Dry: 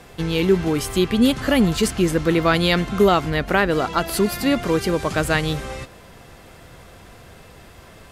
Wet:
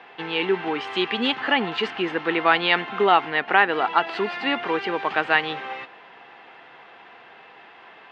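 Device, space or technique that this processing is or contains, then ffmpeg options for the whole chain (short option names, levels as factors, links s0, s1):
phone earpiece: -filter_complex "[0:a]highpass=84,highpass=450,equalizer=f=570:t=q:w=4:g=-8,equalizer=f=840:t=q:w=4:g=8,equalizer=f=1800:t=q:w=4:g=4,equalizer=f=2800:t=q:w=4:g=4,lowpass=f=3300:w=0.5412,lowpass=f=3300:w=1.3066,asettb=1/sr,asplit=3[s0][s1][s2];[s0]atrim=end=0.874[s3];[s1]atrim=start=0.87:end=1.36,asetpts=PTS-STARTPTS,afade=t=in:d=0.004:c=qsin,afade=t=out:st=0.486:d=0.004:c=qsin,aemphasis=mode=production:type=50kf[s4];[s2]atrim=start=1.356[s5];[s3][s4]acrossfade=d=0.004:c1=hsin:c2=qsin[s6];[s6][s5]acrossfade=d=0.004:c1=qsin:c2=hsin"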